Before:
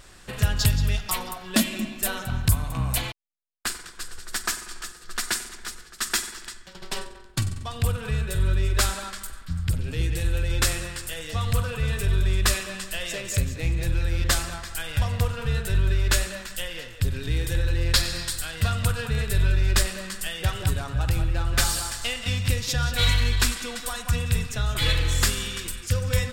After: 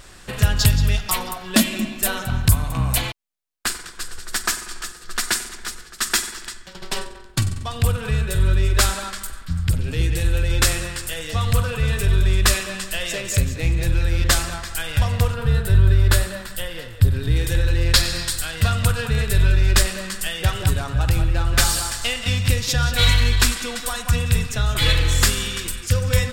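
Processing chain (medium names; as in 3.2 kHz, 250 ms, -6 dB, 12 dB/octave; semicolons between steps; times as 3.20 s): 15.34–17.36 s: fifteen-band graphic EQ 100 Hz +7 dB, 2.5 kHz -6 dB, 6.3 kHz -8 dB; trim +5 dB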